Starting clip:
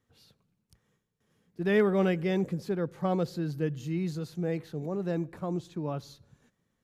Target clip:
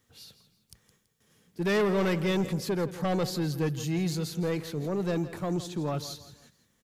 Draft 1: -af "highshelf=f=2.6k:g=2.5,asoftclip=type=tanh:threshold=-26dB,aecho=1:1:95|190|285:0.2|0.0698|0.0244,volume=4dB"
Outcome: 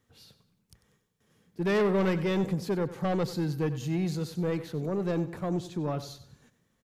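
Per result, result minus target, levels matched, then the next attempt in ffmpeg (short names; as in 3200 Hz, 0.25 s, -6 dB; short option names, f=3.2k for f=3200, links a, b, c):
echo 70 ms early; 4000 Hz band -4.5 dB
-af "highshelf=f=2.6k:g=2.5,asoftclip=type=tanh:threshold=-26dB,aecho=1:1:165|330|495:0.2|0.0698|0.0244,volume=4dB"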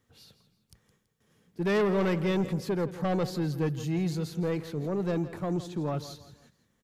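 4000 Hz band -4.5 dB
-af "highshelf=f=2.6k:g=10.5,asoftclip=type=tanh:threshold=-26dB,aecho=1:1:165|330|495:0.2|0.0698|0.0244,volume=4dB"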